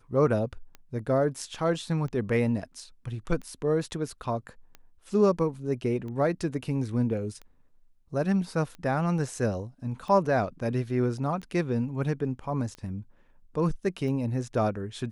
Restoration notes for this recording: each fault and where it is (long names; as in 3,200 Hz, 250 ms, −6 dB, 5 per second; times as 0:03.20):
scratch tick 45 rpm −29 dBFS